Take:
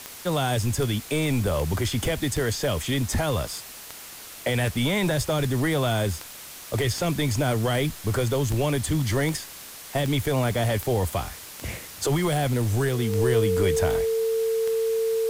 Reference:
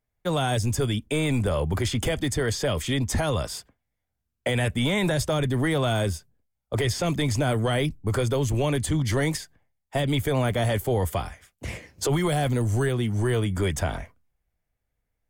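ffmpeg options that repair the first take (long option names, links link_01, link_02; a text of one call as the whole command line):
ffmpeg -i in.wav -af "adeclick=threshold=4,bandreject=frequency=450:width=30,afftdn=noise_reduction=30:noise_floor=-41" out.wav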